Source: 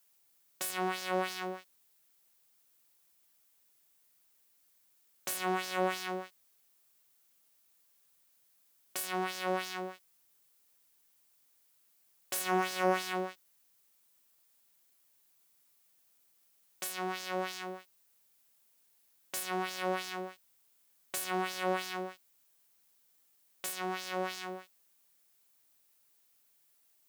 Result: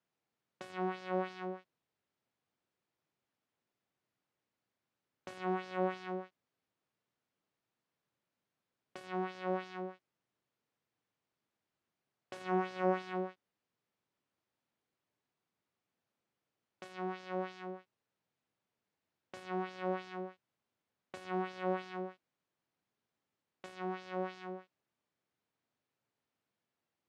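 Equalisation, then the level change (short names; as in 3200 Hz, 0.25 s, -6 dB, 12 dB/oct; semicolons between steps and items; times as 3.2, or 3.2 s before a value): tape spacing loss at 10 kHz 30 dB; low shelf 430 Hz +5 dB; -3.0 dB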